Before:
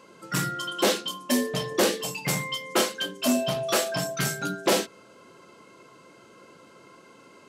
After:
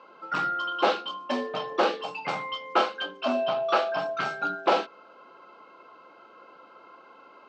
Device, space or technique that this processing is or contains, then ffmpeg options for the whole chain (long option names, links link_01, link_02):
phone earpiece: -filter_complex "[0:a]asettb=1/sr,asplit=3[link_01][link_02][link_03];[link_01]atrim=end=3.204[link_04];[link_02]atrim=start=3.2:end=4.19,asetpts=PTS-STARTPTS,afade=type=in:duration=0.004:curve=qsin,afade=type=out:start_time=0.986:duration=0.004:curve=qsin,lowpass=6400[link_05];[link_03]atrim=start=4.186[link_06];[link_04][link_05]acrossfade=duration=0.004:curve1=hsin:curve2=qsin[link_07];[link_07][link_06]acrossfade=duration=0.004:curve1=qsin:curve2=hsin,highpass=370,equalizer=frequency=400:width_type=q:width=4:gain=-3,equalizer=frequency=800:width_type=q:width=4:gain=8,equalizer=frequency=1300:width_type=q:width=4:gain=8,equalizer=frequency=1900:width_type=q:width=4:gain=-8,equalizer=frequency=3400:width_type=q:width=4:gain=-4,lowpass=frequency=3700:width=0.5412,lowpass=frequency=3700:width=1.3066"